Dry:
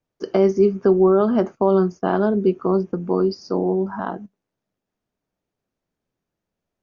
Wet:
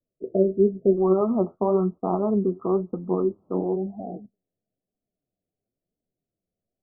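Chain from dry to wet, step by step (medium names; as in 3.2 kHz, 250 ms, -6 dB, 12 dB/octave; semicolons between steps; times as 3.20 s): local Wiener filter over 15 samples; Chebyshev low-pass 690 Hz, order 8, from 0.96 s 1.3 kHz, from 3.75 s 760 Hz; flange 1 Hz, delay 3.2 ms, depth 8.9 ms, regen +55%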